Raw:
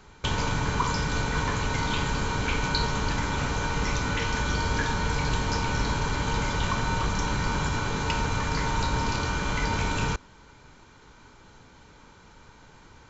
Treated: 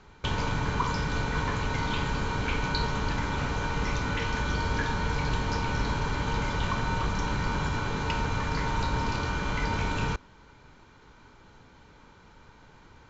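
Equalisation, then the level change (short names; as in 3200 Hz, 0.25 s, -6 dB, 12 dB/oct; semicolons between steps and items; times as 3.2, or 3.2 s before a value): air absorption 89 m; -1.5 dB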